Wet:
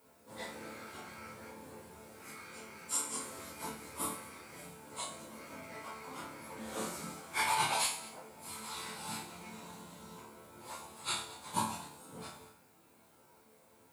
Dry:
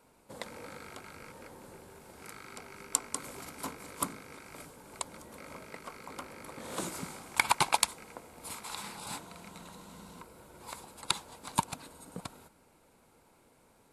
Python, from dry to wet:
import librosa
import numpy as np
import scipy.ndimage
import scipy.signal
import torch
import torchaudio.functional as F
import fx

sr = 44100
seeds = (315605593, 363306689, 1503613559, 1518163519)

p1 = fx.phase_scramble(x, sr, seeds[0], window_ms=100)
p2 = scipy.signal.sosfilt(scipy.signal.butter(2, 84.0, 'highpass', fs=sr, output='sos'), p1)
p3 = fx.rider(p2, sr, range_db=4, speed_s=2.0)
p4 = p2 + (p3 * 10.0 ** (2.5 / 20.0))
p5 = fx.resonator_bank(p4, sr, root=38, chord='minor', decay_s=0.53)
p6 = fx.dmg_noise_colour(p5, sr, seeds[1], colour='violet', level_db=-76.0)
p7 = p6 + fx.echo_single(p6, sr, ms=221, db=-20.0, dry=0)
y = p7 * 10.0 ** (4.0 / 20.0)